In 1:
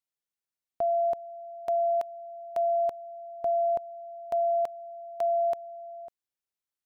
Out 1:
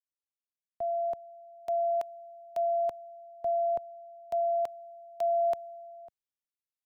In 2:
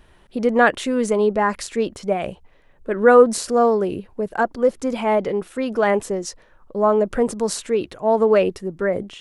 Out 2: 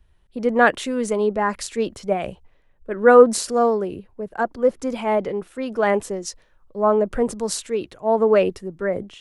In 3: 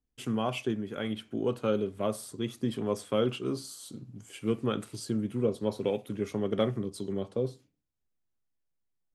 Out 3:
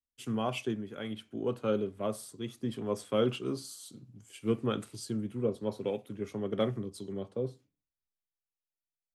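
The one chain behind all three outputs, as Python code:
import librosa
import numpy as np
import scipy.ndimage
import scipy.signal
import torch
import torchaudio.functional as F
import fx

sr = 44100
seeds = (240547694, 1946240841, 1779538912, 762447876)

y = fx.rider(x, sr, range_db=5, speed_s=2.0)
y = fx.band_widen(y, sr, depth_pct=40)
y = y * librosa.db_to_amplitude(-3.5)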